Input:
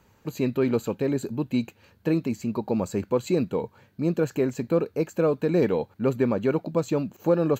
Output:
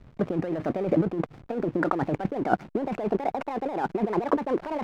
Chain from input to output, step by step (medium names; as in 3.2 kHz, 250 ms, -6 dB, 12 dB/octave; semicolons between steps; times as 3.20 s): gliding tape speed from 129% -> 185%; compressor with a negative ratio -33 dBFS, ratio -1; steep low-pass 2.4 kHz 48 dB/octave; hysteresis with a dead band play -41.5 dBFS; trim +7 dB